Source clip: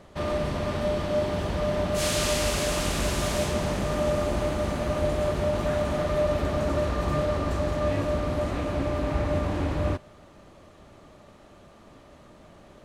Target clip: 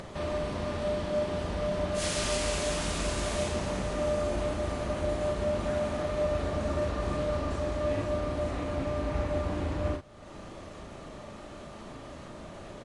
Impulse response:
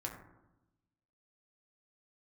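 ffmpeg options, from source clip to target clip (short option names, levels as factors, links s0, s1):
-filter_complex "[0:a]asplit=2[s0][s1];[s1]adelay=37,volume=0.596[s2];[s0][s2]amix=inputs=2:normalize=0,acompressor=mode=upward:threshold=0.0501:ratio=2.5,volume=0.531" -ar 24000 -c:a libmp3lame -b:a 48k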